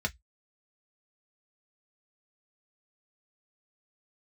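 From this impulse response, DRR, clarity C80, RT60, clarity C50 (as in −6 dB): 2.0 dB, 43.5 dB, 0.10 s, 28.5 dB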